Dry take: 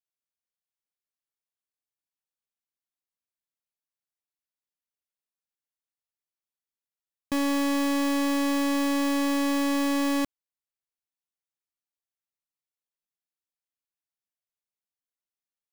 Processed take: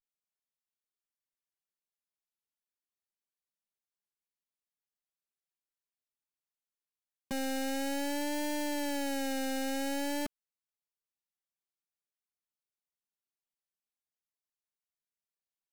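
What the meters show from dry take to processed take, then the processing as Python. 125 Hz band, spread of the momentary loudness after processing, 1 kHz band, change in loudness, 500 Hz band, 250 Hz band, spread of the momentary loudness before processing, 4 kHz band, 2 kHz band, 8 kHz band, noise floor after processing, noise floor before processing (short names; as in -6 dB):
n/a, 3 LU, -7.5 dB, -9.0 dB, -5.5 dB, -11.0 dB, 3 LU, -6.0 dB, -7.0 dB, -4.5 dB, under -85 dBFS, under -85 dBFS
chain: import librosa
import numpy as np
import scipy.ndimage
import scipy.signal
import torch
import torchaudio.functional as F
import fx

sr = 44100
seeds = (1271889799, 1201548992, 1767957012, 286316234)

y = x + 0.98 * np.pad(x, (int(4.9 * sr / 1000.0), 0))[:len(x)]
y = fx.vibrato(y, sr, rate_hz=0.5, depth_cents=92.0)
y = y * 10.0 ** (-8.5 / 20.0)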